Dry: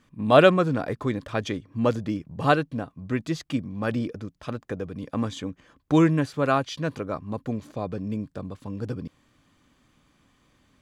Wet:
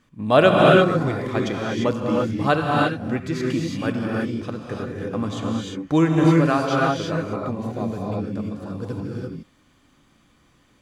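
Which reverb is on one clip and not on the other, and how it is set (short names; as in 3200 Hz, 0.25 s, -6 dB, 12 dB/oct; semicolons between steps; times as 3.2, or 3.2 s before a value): non-linear reverb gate 0.37 s rising, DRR -2.5 dB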